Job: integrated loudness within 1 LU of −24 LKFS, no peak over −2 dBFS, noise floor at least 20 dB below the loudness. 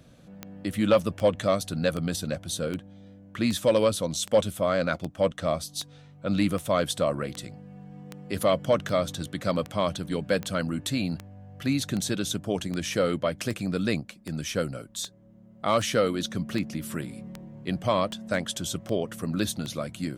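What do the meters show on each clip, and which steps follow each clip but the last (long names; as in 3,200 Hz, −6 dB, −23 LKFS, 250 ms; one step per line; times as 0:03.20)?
number of clicks 26; integrated loudness −28.0 LKFS; sample peak −11.5 dBFS; target loudness −24.0 LKFS
→ click removal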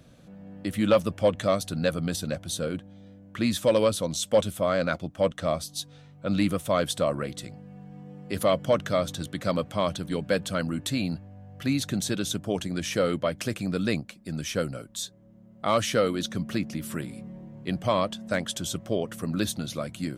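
number of clicks 0; integrated loudness −28.0 LKFS; sample peak −11.5 dBFS; target loudness −24.0 LKFS
→ level +4 dB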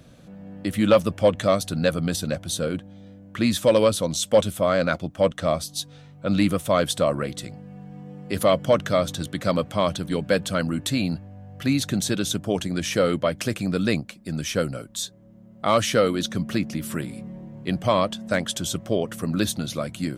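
integrated loudness −24.0 LKFS; sample peak −7.5 dBFS; background noise floor −48 dBFS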